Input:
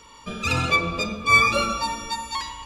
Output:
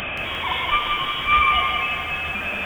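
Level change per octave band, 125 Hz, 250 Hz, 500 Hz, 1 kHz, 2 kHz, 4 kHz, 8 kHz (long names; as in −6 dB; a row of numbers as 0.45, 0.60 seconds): −5.5 dB, −6.5 dB, −4.0 dB, +3.0 dB, +0.5 dB, +4.5 dB, below −15 dB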